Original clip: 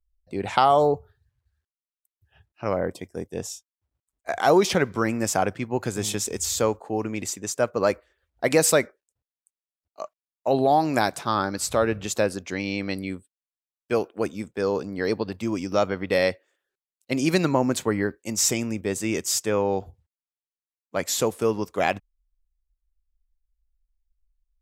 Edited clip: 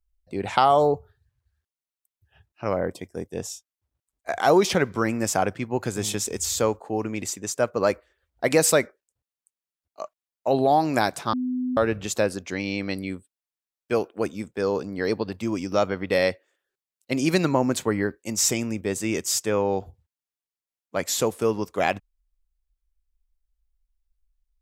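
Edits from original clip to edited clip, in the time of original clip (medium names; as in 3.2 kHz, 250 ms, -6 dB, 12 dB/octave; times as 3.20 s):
11.33–11.77 s: bleep 252 Hz -23.5 dBFS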